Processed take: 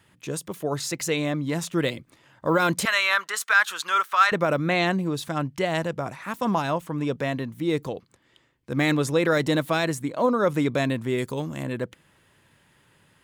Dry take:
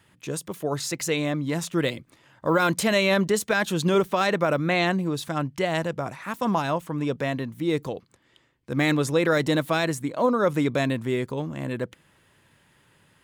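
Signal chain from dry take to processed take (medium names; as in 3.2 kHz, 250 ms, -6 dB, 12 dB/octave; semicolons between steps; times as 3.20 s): 2.85–4.32 s: resonant high-pass 1.3 kHz, resonance Q 3.2; 11.18–11.63 s: treble shelf 4.5 kHz +11.5 dB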